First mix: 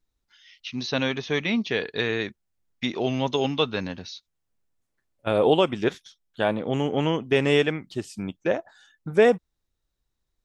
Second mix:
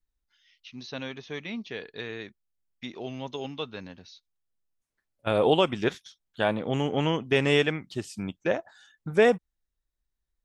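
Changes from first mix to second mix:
first voice -11.0 dB; second voice: add bell 370 Hz -3 dB 2.1 oct

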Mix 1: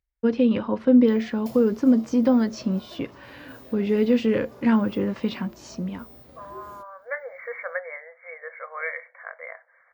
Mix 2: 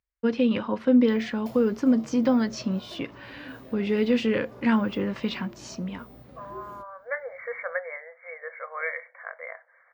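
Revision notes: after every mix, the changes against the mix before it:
first voice: add tilt +3 dB/oct; master: add tone controls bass +6 dB, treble -7 dB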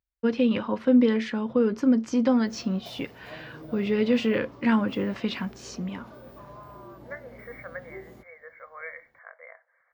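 second voice -8.5 dB; background: entry +1.40 s

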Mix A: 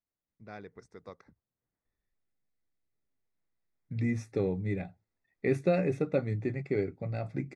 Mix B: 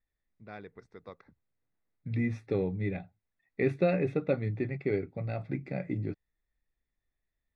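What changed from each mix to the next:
second voice: entry -1.85 s; master: add resonant high shelf 4900 Hz -10.5 dB, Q 1.5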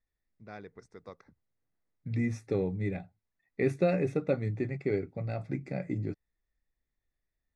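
master: add resonant high shelf 4900 Hz +10.5 dB, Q 1.5

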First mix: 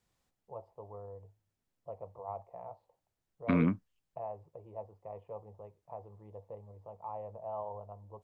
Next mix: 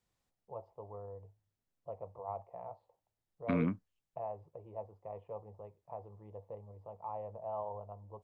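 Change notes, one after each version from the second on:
second voice -4.5 dB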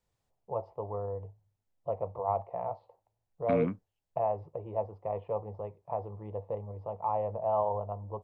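first voice +11.0 dB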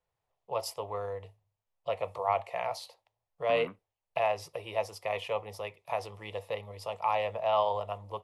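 first voice: remove ladder low-pass 1100 Hz, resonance 40%; master: add three-band isolator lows -14 dB, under 570 Hz, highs -15 dB, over 2400 Hz

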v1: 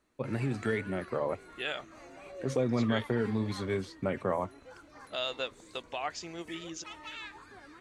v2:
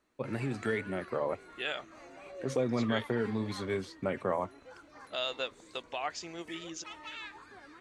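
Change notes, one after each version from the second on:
background: add high shelf 11000 Hz -9.5 dB; master: add low shelf 170 Hz -6 dB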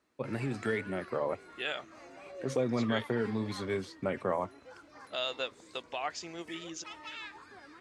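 background: remove notch 5100 Hz, Q 9.4; master: add HPF 58 Hz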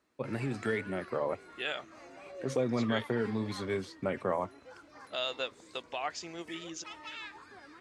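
none

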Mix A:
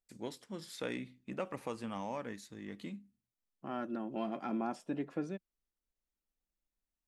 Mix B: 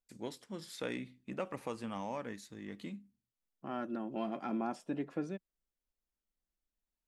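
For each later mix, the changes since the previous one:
none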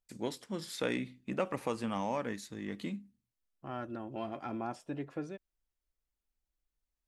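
first voice +5.5 dB; second voice: add resonant low shelf 140 Hz +8.5 dB, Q 3

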